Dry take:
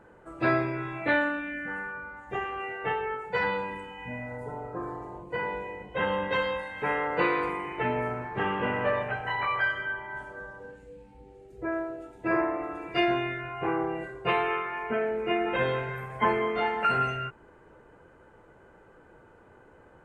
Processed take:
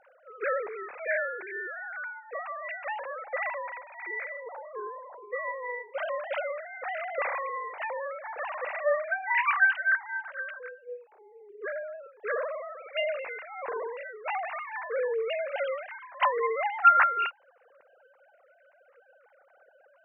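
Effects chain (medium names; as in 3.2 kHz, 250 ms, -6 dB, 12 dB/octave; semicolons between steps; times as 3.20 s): formants replaced by sine waves; trim -1 dB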